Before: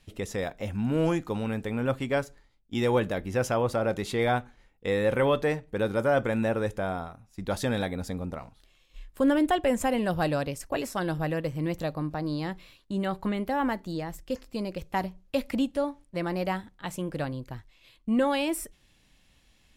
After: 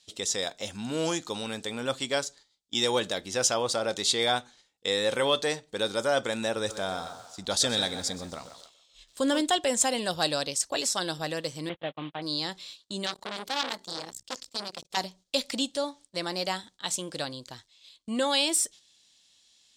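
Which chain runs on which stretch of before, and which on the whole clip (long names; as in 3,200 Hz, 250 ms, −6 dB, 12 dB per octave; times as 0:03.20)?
0:06.56–0:09.41: low-shelf EQ 140 Hz +6 dB + delay with a band-pass on its return 139 ms, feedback 41%, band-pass 930 Hz, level −9 dB + feedback echo at a low word length 126 ms, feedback 35%, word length 8 bits, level −14.5 dB
0:11.69–0:12.22: variable-slope delta modulation 16 kbit/s + noise gate −35 dBFS, range −40 dB
0:13.06–0:14.97: high-shelf EQ 7,900 Hz +4 dB + saturating transformer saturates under 1,800 Hz
whole clip: high-pass filter 450 Hz 6 dB per octave; noise gate −55 dBFS, range −7 dB; flat-topped bell 5,400 Hz +15.5 dB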